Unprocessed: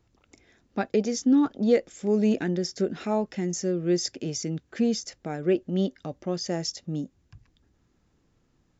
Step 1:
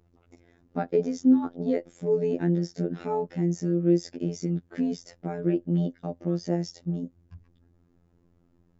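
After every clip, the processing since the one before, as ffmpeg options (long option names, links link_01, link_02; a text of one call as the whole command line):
ffmpeg -i in.wav -filter_complex "[0:a]tiltshelf=frequency=1500:gain=8,asplit=2[link_01][link_02];[link_02]acompressor=threshold=-22dB:ratio=6,volume=-1dB[link_03];[link_01][link_03]amix=inputs=2:normalize=0,afftfilt=real='hypot(re,im)*cos(PI*b)':imag='0':win_size=2048:overlap=0.75,volume=-6dB" out.wav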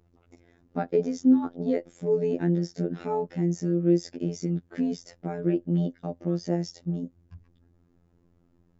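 ffmpeg -i in.wav -af anull out.wav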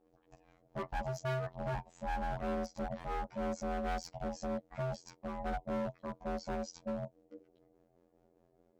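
ffmpeg -i in.wav -af "aeval=exprs='val(0)*sin(2*PI*390*n/s)':channel_layout=same,volume=29dB,asoftclip=hard,volume=-29dB,volume=-3.5dB" out.wav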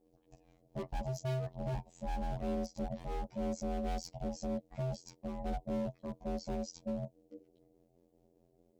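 ffmpeg -i in.wav -af "equalizer=frequency=1400:width_type=o:width=1.5:gain=-14.5,volume=2.5dB" out.wav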